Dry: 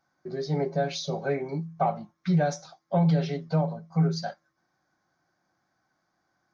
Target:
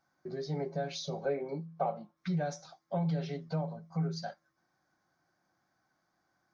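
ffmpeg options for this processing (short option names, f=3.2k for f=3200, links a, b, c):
-filter_complex "[0:a]acompressor=threshold=-39dB:ratio=1.5,asettb=1/sr,asplit=3[a][b][c];[a]atrim=end=1.254[d];[b]atrim=start=1.25:end=2.17,asetpts=PTS-STARTPTS,afade=t=in:d=0.004:c=qsin,afade=t=out:st=0.916:d=0.004:c=qsin,highpass=100,equalizer=f=120:t=q:w=4:g=-10,equalizer=f=510:t=q:w=4:g=10,equalizer=f=1.9k:t=q:w=4:g=-5,lowpass=f=5k:w=0.5412,lowpass=f=5k:w=1.3066[e];[c]atrim=start=2.166[f];[d][e]acrossfade=d=0.004:c1=hsin:c2=qsin[g];[g][f]acrossfade=d=0.004:c1=qsin:c2=hsin,volume=-2.5dB"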